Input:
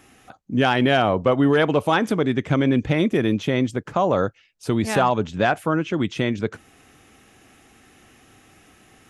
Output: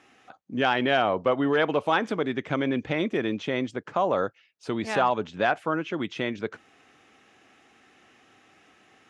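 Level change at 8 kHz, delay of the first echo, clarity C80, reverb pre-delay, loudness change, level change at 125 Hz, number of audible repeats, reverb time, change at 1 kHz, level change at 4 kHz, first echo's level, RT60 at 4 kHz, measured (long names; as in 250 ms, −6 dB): −10.5 dB, no echo audible, no reverb audible, no reverb audible, −5.5 dB, −12.5 dB, no echo audible, no reverb audible, −3.5 dB, −4.0 dB, no echo audible, no reverb audible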